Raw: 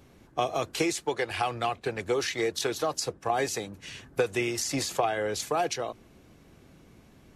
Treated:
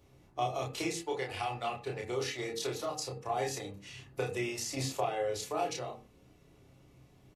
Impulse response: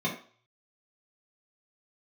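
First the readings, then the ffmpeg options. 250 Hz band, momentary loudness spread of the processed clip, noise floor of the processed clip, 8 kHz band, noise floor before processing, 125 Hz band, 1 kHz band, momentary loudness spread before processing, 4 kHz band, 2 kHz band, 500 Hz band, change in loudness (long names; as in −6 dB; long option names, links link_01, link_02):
−7.0 dB, 8 LU, −62 dBFS, −7.0 dB, −57 dBFS, −2.0 dB, −5.5 dB, 7 LU, −6.5 dB, −8.0 dB, −6.5 dB, −6.0 dB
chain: -filter_complex "[0:a]bandreject=frequency=1600:width=6.6,asplit=2[link_01][link_02];[link_02]adelay=30,volume=-2.5dB[link_03];[link_01][link_03]amix=inputs=2:normalize=0,asplit=2[link_04][link_05];[1:a]atrim=start_sample=2205,afade=type=out:start_time=0.14:duration=0.01,atrim=end_sample=6615,asetrate=32634,aresample=44100[link_06];[link_05][link_06]afir=irnorm=-1:irlink=0,volume=-16dB[link_07];[link_04][link_07]amix=inputs=2:normalize=0,volume=-8dB"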